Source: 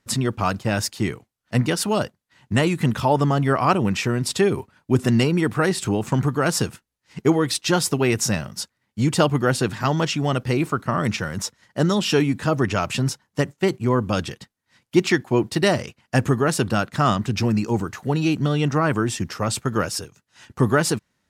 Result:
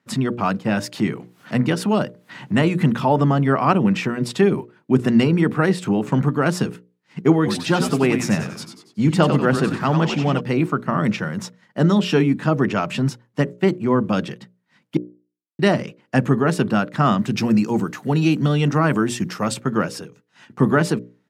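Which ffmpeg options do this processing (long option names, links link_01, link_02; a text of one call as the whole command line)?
ffmpeg -i in.wav -filter_complex "[0:a]asettb=1/sr,asplit=3[link_01][link_02][link_03];[link_01]atrim=end=0.844[link_04];[link_02]atrim=start=0.84:end=4.36,asetpts=PTS-STARTPTS,afade=type=in:duration=0.004:curve=qsin,afade=type=out:start_time=3.516:duration=0.004:curve=qsin,acompressor=mode=upward:threshold=-21dB:ratio=2.5:attack=3.2:release=140:knee=2.83:detection=peak[link_05];[link_03]atrim=start=4.356[link_06];[link_04][link_05]acrossfade=duration=0.004:curve1=hsin:curve2=qsin[link_07];[link_07][link_06]acrossfade=duration=0.004:curve1=qsin:curve2=hsin,asplit=3[link_08][link_09][link_10];[link_08]afade=type=out:start_time=7.45:duration=0.02[link_11];[link_09]asplit=6[link_12][link_13][link_14][link_15][link_16][link_17];[link_13]adelay=94,afreqshift=-110,volume=-7dB[link_18];[link_14]adelay=188,afreqshift=-220,volume=-13.7dB[link_19];[link_15]adelay=282,afreqshift=-330,volume=-20.5dB[link_20];[link_16]adelay=376,afreqshift=-440,volume=-27.2dB[link_21];[link_17]adelay=470,afreqshift=-550,volume=-34dB[link_22];[link_12][link_18][link_19][link_20][link_21][link_22]amix=inputs=6:normalize=0,afade=type=in:start_time=7.45:duration=0.02,afade=type=out:start_time=10.39:duration=0.02[link_23];[link_10]afade=type=in:start_time=10.39:duration=0.02[link_24];[link_11][link_23][link_24]amix=inputs=3:normalize=0,asettb=1/sr,asplit=3[link_25][link_26][link_27];[link_25]atrim=end=17.184[link_28];[link_26]atrim=start=17.18:end=19.54,asetpts=PTS-STARTPTS,afade=type=in:duration=0.004:curve=qsin,afade=type=out:start_time=2.356:duration=0.004:curve=qsin,highshelf=frequency=4500:gain=10.5[link_29];[link_27]atrim=start=19.536[link_30];[link_28][link_29]acrossfade=duration=0.004:curve1=hsin:curve2=qsin[link_31];[link_31][link_30]acrossfade=duration=0.004:curve1=qsin:curve2=hsin,asplit=3[link_32][link_33][link_34];[link_32]atrim=end=14.97,asetpts=PTS-STARTPTS,afade=type=out:start_time=14.966:duration=0.004:curve=hsin[link_35];[link_33]atrim=start=14.97:end=15.59,asetpts=PTS-STARTPTS,volume=0[link_36];[link_34]atrim=start=15.59,asetpts=PTS-STARTPTS,afade=type=in:duration=0.004:curve=hsin[link_37];[link_35][link_36][link_37]concat=n=3:v=0:a=1,highpass=frequency=160:width=0.5412,highpass=frequency=160:width=1.3066,bass=frequency=250:gain=8,treble=frequency=4000:gain=-10,bandreject=frequency=60:width_type=h:width=6,bandreject=frequency=120:width_type=h:width=6,bandreject=frequency=180:width_type=h:width=6,bandreject=frequency=240:width_type=h:width=6,bandreject=frequency=300:width_type=h:width=6,bandreject=frequency=360:width_type=h:width=6,bandreject=frequency=420:width_type=h:width=6,bandreject=frequency=480:width_type=h:width=6,bandreject=frequency=540:width_type=h:width=6,bandreject=frequency=600:width_type=h:width=6,volume=1dB" out.wav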